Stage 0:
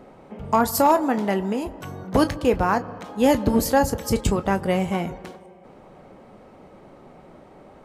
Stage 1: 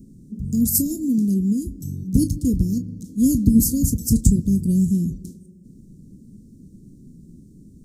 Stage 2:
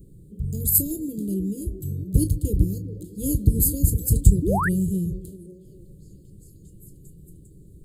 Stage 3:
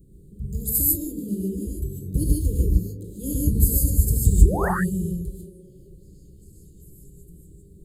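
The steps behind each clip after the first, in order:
inverse Chebyshev band-stop 770–2200 Hz, stop band 70 dB; gain +8 dB
fixed phaser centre 1200 Hz, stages 8; delay with a stepping band-pass 0.4 s, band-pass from 320 Hz, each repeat 0.7 oct, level -9 dB; painted sound rise, 4.42–4.69, 260–2000 Hz -28 dBFS; gain +4 dB
non-linear reverb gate 0.17 s rising, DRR -3.5 dB; gain -5.5 dB

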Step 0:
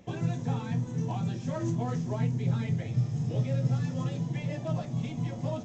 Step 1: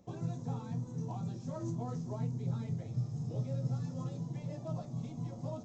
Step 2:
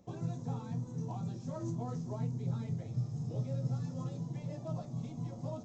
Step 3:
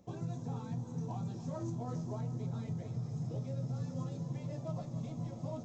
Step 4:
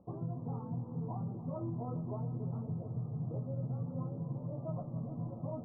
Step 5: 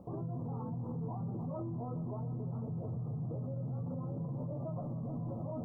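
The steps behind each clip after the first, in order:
band shelf 2300 Hz -10 dB 1.3 oct; gain -7.5 dB
nothing audible
limiter -30.5 dBFS, peak gain reduction 6 dB; multi-head echo 0.143 s, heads second and third, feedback 72%, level -15 dB
elliptic low-pass 1200 Hz, stop band 40 dB; gain +1 dB
in parallel at -0.5 dB: negative-ratio compressor -42 dBFS; on the sum: limiter -34.5 dBFS, peak gain reduction 9.5 dB; gain +2 dB

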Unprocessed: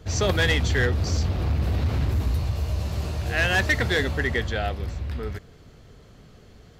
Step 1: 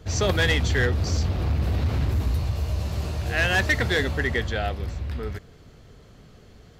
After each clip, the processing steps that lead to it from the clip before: nothing audible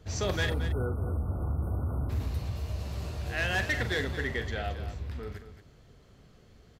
spectral delete 0.49–2.1, 1500–8400 Hz; on a send: loudspeakers at several distances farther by 15 m -11 dB, 77 m -11 dB; on the sum: gain -8 dB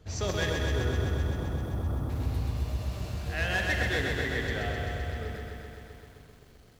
lo-fi delay 0.129 s, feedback 80%, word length 10-bit, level -4 dB; gain -1.5 dB

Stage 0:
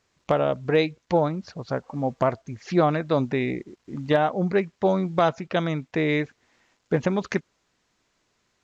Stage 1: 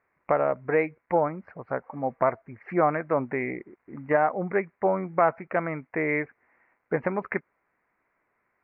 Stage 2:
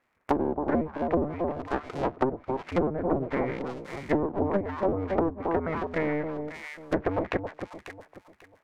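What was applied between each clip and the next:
elliptic low-pass 2200 Hz, stop band 40 dB; low shelf 330 Hz -12 dB; gain +2 dB
cycle switcher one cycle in 2, inverted; echo with dull and thin repeats by turns 0.271 s, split 870 Hz, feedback 51%, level -6 dB; treble ducked by the level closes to 420 Hz, closed at -19 dBFS

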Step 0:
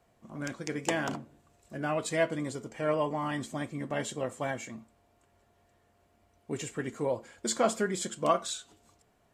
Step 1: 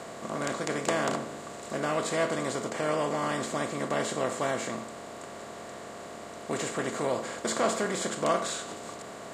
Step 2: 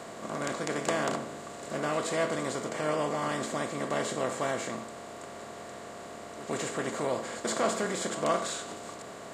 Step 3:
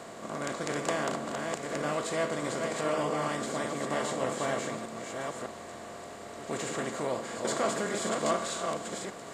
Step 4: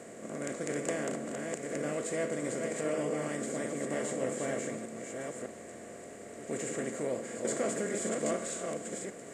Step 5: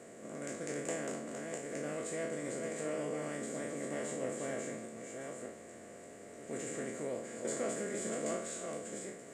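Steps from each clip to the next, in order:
per-bin compression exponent 0.4; gain -4 dB
pre-echo 0.123 s -14 dB; gain -1.5 dB
reverse delay 0.607 s, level -4 dB; gain -1.5 dB
ten-band EQ 125 Hz +3 dB, 250 Hz +6 dB, 500 Hz +8 dB, 1000 Hz -9 dB, 2000 Hz +7 dB, 4000 Hz -8 dB, 8000 Hz +10 dB; gain -7.5 dB
spectral trails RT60 0.61 s; gain -6.5 dB

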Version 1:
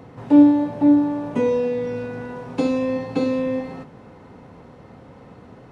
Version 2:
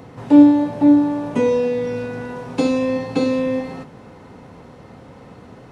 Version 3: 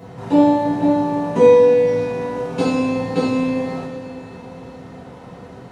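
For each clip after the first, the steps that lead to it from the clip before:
high shelf 3600 Hz +6.5 dB; gain +2.5 dB
reverb, pre-delay 3 ms, DRR -6.5 dB; gain -4.5 dB

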